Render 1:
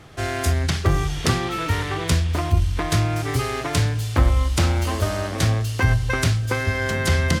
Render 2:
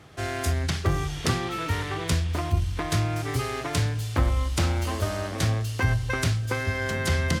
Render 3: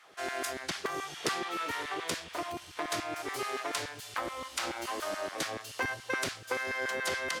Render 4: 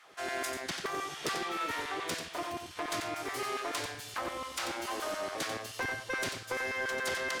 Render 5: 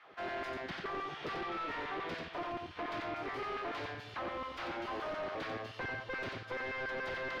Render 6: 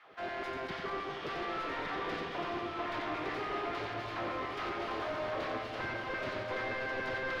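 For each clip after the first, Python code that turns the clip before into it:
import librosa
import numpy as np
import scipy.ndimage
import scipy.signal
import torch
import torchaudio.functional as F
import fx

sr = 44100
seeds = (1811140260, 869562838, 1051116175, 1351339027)

y1 = scipy.signal.sosfilt(scipy.signal.butter(2, 51.0, 'highpass', fs=sr, output='sos'), x)
y1 = y1 * 10.0 ** (-4.5 / 20.0)
y2 = fx.filter_lfo_highpass(y1, sr, shape='saw_down', hz=7.0, low_hz=280.0, high_hz=1600.0, q=1.3)
y2 = y2 * 10.0 ** (-4.5 / 20.0)
y3 = 10.0 ** (-26.5 / 20.0) * np.tanh(y2 / 10.0 ** (-26.5 / 20.0))
y3 = y3 + 10.0 ** (-7.0 / 20.0) * np.pad(y3, (int(91 * sr / 1000.0), 0))[:len(y3)]
y4 = np.clip(y3, -10.0 ** (-36.5 / 20.0), 10.0 ** (-36.5 / 20.0))
y4 = fx.air_absorb(y4, sr, metres=320.0)
y4 = y4 * 10.0 ** (2.0 / 20.0)
y5 = fx.reverse_delay_fb(y4, sr, ms=113, feedback_pct=75, wet_db=-7.0)
y5 = y5 + 10.0 ** (-4.5 / 20.0) * np.pad(y5, (int(1162 * sr / 1000.0), 0))[:len(y5)]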